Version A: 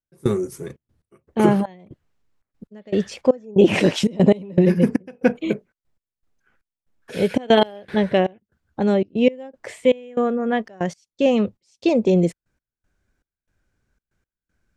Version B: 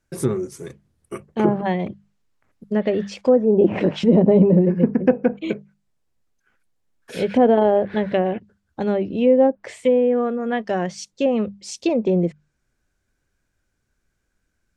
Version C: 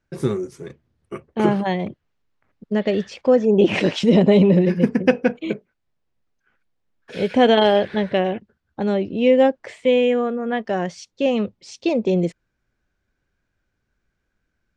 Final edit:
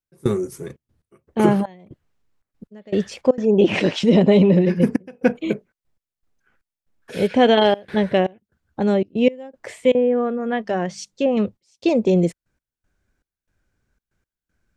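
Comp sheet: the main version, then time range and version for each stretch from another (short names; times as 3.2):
A
3.38–4.8 from C
7.27–7.74 from C
9.95–11.37 from B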